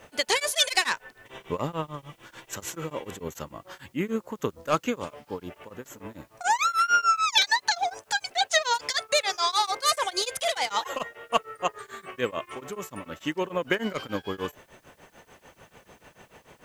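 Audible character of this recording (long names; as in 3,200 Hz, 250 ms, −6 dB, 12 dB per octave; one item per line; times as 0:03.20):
tremolo triangle 6.8 Hz, depth 100%
a quantiser's noise floor 12 bits, dither triangular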